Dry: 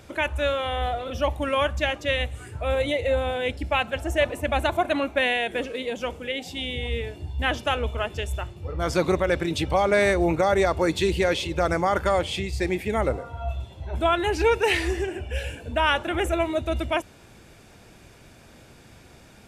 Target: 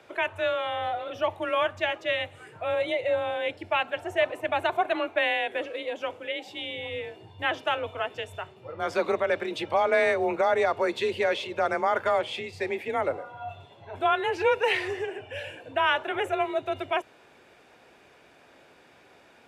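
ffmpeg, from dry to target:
-filter_complex "[0:a]afreqshift=29,acrossover=split=320 3700:gain=0.126 1 0.251[a][b][c];[a][b][c]amix=inputs=3:normalize=0,volume=-1.5dB"

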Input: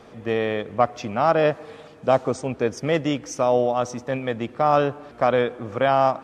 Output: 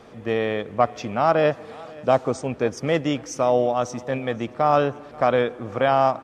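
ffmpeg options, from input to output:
-af "aecho=1:1:533|1066|1599:0.0794|0.031|0.0121"

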